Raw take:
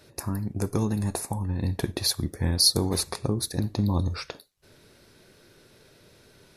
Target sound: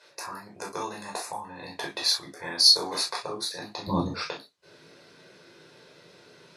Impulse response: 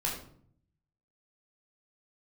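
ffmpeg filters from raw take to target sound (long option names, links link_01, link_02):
-filter_complex "[0:a]asetnsamples=nb_out_samples=441:pad=0,asendcmd='3.87 highpass f 230',highpass=690,lowpass=6600[link_01];[1:a]atrim=start_sample=2205,atrim=end_sample=3087[link_02];[link_01][link_02]afir=irnorm=-1:irlink=0"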